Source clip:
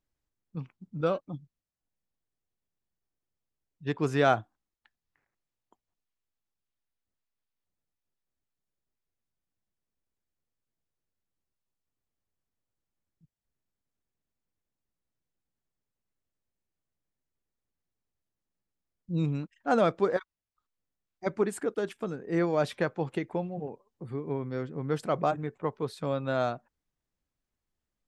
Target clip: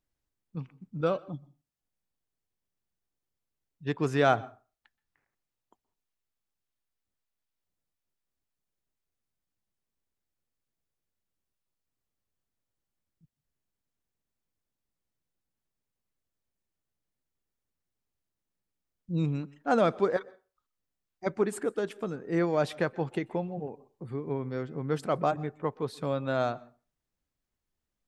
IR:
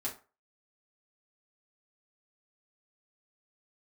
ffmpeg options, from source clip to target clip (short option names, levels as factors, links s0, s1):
-filter_complex "[0:a]asplit=2[s0][s1];[1:a]atrim=start_sample=2205,adelay=122[s2];[s1][s2]afir=irnorm=-1:irlink=0,volume=0.0631[s3];[s0][s3]amix=inputs=2:normalize=0"